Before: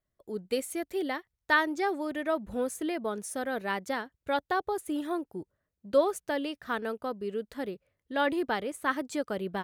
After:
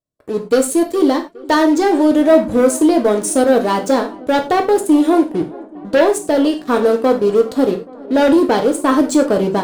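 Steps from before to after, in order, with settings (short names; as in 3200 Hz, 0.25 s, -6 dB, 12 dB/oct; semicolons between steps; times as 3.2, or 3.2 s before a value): ten-band EQ 125 Hz +10 dB, 250 Hz +8 dB, 500 Hz +10 dB, 1000 Hz +5 dB, 2000 Hz -7 dB, 4000 Hz +6 dB, 8000 Hz +10 dB; sample leveller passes 3; AGC; on a send: darkening echo 0.414 s, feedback 78%, low-pass 2200 Hz, level -22 dB; on the sum: non-linear reverb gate 0.13 s falling, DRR 3.5 dB; gain -6 dB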